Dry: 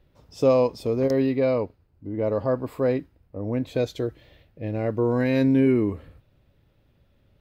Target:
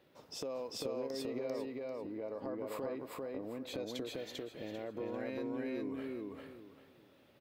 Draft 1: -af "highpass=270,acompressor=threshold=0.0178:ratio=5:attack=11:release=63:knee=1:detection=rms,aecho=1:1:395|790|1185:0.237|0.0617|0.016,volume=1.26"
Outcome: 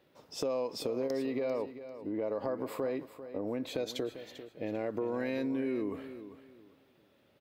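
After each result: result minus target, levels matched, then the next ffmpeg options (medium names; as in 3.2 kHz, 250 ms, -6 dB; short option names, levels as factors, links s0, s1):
compression: peak gain reduction -8 dB; echo-to-direct -11.5 dB
-af "highpass=270,acompressor=threshold=0.00562:ratio=5:attack=11:release=63:knee=1:detection=rms,aecho=1:1:395|790|1185:0.237|0.0617|0.016,volume=1.26"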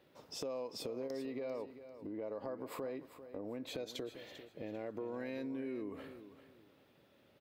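echo-to-direct -11.5 dB
-af "highpass=270,acompressor=threshold=0.00562:ratio=5:attack=11:release=63:knee=1:detection=rms,aecho=1:1:395|790|1185|1580:0.891|0.232|0.0602|0.0157,volume=1.26"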